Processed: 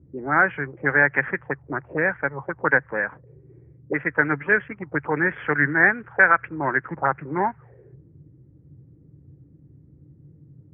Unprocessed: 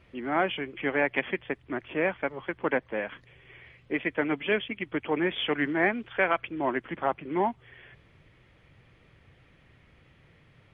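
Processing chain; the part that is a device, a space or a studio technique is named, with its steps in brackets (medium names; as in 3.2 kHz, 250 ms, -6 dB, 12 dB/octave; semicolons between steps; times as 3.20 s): envelope filter bass rig (touch-sensitive low-pass 280–1600 Hz up, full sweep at -26.5 dBFS; cabinet simulation 64–2100 Hz, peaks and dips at 84 Hz +5 dB, 140 Hz +10 dB, 240 Hz -7 dB, 360 Hz -4 dB, 660 Hz -7 dB, 1.1 kHz -4 dB); 1.88–2.39 s: dynamic bell 1.2 kHz, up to -5 dB, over -38 dBFS, Q 1.8; trim +4.5 dB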